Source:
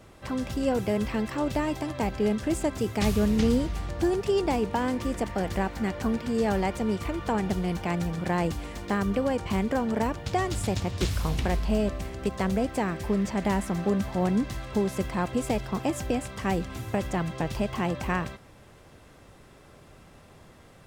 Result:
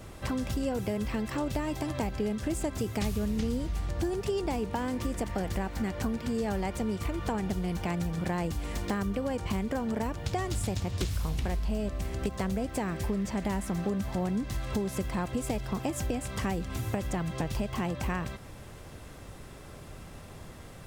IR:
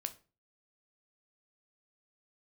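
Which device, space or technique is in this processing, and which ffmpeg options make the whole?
ASMR close-microphone chain: -af "lowshelf=f=130:g=6.5,acompressor=threshold=-33dB:ratio=4,highshelf=f=6.5k:g=6,volume=3.5dB"

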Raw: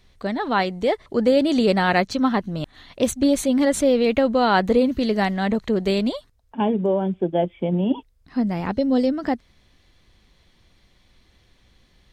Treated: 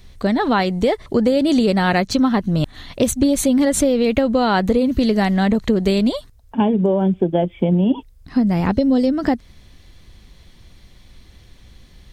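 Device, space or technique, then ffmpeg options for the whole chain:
ASMR close-microphone chain: -af "lowshelf=f=240:g=8,acompressor=threshold=-19dB:ratio=6,highshelf=f=6.2k:g=7.5,volume=6dB"

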